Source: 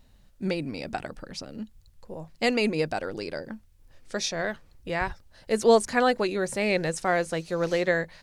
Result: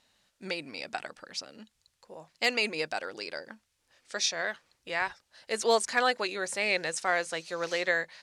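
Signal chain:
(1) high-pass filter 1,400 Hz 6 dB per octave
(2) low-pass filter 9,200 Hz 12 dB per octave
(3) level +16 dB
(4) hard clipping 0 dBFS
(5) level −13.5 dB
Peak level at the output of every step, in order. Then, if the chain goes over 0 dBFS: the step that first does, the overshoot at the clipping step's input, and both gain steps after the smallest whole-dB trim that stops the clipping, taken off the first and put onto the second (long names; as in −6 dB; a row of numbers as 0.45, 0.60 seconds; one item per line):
−13.0, −13.0, +3.0, 0.0, −13.5 dBFS
step 3, 3.0 dB
step 3 +13 dB, step 5 −10.5 dB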